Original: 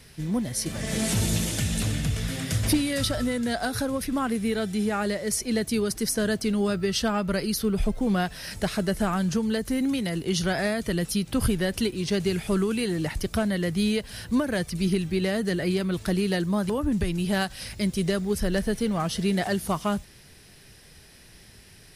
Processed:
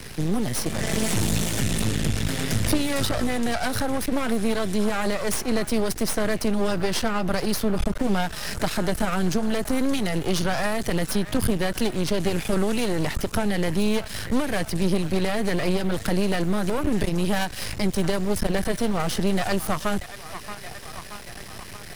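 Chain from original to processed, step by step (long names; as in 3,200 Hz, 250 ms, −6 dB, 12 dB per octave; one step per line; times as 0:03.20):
delay with a band-pass on its return 628 ms, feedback 57%, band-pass 1,400 Hz, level −15.5 dB
in parallel at −3 dB: brickwall limiter −24.5 dBFS, peak gain reduction 11 dB
on the sum: half-wave rectification
multiband upward and downward compressor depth 40%
level +3.5 dB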